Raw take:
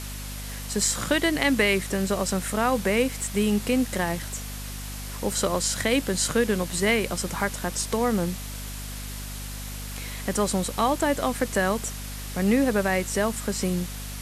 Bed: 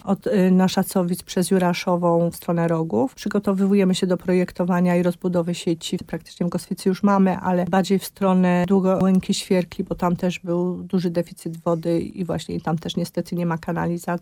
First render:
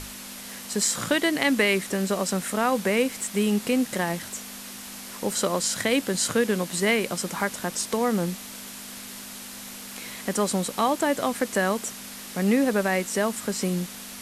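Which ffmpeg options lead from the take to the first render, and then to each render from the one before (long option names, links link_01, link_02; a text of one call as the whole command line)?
ffmpeg -i in.wav -af "bandreject=frequency=50:width_type=h:width=6,bandreject=frequency=100:width_type=h:width=6,bandreject=frequency=150:width_type=h:width=6" out.wav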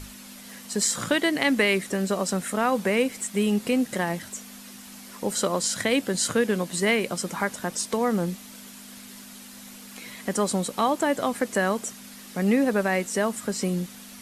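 ffmpeg -i in.wav -af "afftdn=noise_reduction=7:noise_floor=-40" out.wav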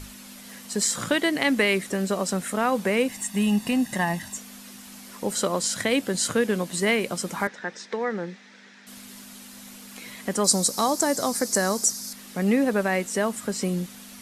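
ffmpeg -i in.wav -filter_complex "[0:a]asettb=1/sr,asplit=3[link_01][link_02][link_03];[link_01]atrim=end=3.084[link_04];[link_02]atrim=start=3.08:end=4.38,asetpts=PTS-STARTPTS,afade=type=in:duration=0.004:curve=qsin,afade=type=out:start_time=1.296:duration=0.004:curve=qsin,aecho=1:1:1.1:0.65,atrim=end_sample=57330[link_05];[link_03]atrim=start=4.376[link_06];[link_04][link_05]acrossfade=duration=0.004:curve1=hsin:curve2=qsin[link_07];[link_07][link_06]acrossfade=duration=0.004:curve1=qsin:curve2=hsin,asettb=1/sr,asplit=3[link_08][link_09][link_10];[link_08]atrim=end=7.474[link_11];[link_09]atrim=start=7.47:end=8.87,asetpts=PTS-STARTPTS,afade=type=in:duration=0.004:curve=qsin,afade=type=out:start_time=1.396:duration=0.004:curve=qsin,highpass=270,equalizer=frequency=270:width_type=q:width=4:gain=-8,equalizer=frequency=650:width_type=q:width=4:gain=-7,equalizer=frequency=1100:width_type=q:width=4:gain=-7,equalizer=frequency=1800:width_type=q:width=4:gain=8,equalizer=frequency=3000:width_type=q:width=4:gain=-7,equalizer=frequency=4500:width_type=q:width=4:gain=-6,lowpass=frequency=4800:width=0.5412,lowpass=frequency=4800:width=1.3066[link_12];[link_10]atrim=start=8.866[link_13];[link_11][link_12]acrossfade=duration=0.004:curve1=hsin:curve2=qsin[link_14];[link_14][link_13]acrossfade=duration=0.004:curve1=qsin:curve2=hsin,asettb=1/sr,asplit=3[link_15][link_16][link_17];[link_15]atrim=end=10.444[link_18];[link_16]atrim=start=10.44:end=12.13,asetpts=PTS-STARTPTS,afade=type=in:duration=0.004:curve=qsin,afade=type=out:start_time=1.686:duration=0.004:curve=qsin,highshelf=frequency=3900:width_type=q:width=3:gain=9[link_19];[link_17]atrim=start=12.126[link_20];[link_18][link_19]acrossfade=duration=0.004:curve1=hsin:curve2=qsin[link_21];[link_21][link_20]acrossfade=duration=0.004:curve1=qsin:curve2=hsin" out.wav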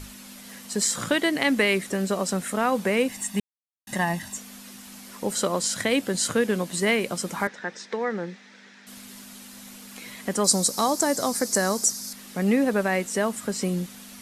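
ffmpeg -i in.wav -filter_complex "[0:a]asplit=3[link_01][link_02][link_03];[link_01]atrim=end=3.4,asetpts=PTS-STARTPTS,afade=type=out:start_time=3.396:duration=0.004:curve=hsin[link_04];[link_02]atrim=start=3.4:end=3.87,asetpts=PTS-STARTPTS,volume=0[link_05];[link_03]atrim=start=3.87,asetpts=PTS-STARTPTS,afade=type=in:duration=0.004:curve=hsin[link_06];[link_04][link_05][link_06]concat=n=3:v=0:a=1" out.wav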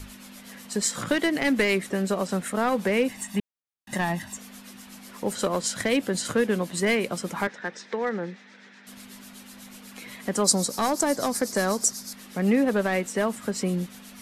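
ffmpeg -i in.wav -filter_complex "[0:a]acrossover=split=500|3600[link_01][link_02][link_03];[link_02]aeval=exprs='clip(val(0),-1,0.0562)':channel_layout=same[link_04];[link_03]tremolo=f=8.1:d=0.85[link_05];[link_01][link_04][link_05]amix=inputs=3:normalize=0" out.wav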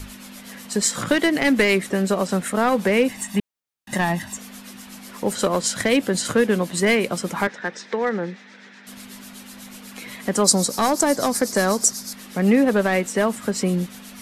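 ffmpeg -i in.wav -af "volume=5dB,alimiter=limit=-2dB:level=0:latency=1" out.wav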